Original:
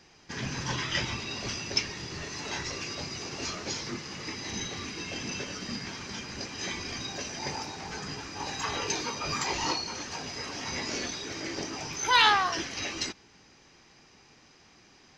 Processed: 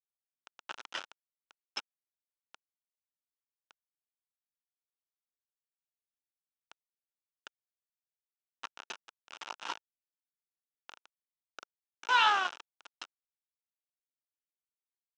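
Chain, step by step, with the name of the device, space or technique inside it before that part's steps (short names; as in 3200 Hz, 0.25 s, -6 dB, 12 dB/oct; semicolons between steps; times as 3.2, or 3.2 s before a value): hand-held game console (bit-crush 4-bit; speaker cabinet 420–5300 Hz, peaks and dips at 470 Hz -3 dB, 900 Hz +5 dB, 1400 Hz +9 dB, 2000 Hz -6 dB, 2800 Hz +5 dB, 4500 Hz -9 dB); gain -7.5 dB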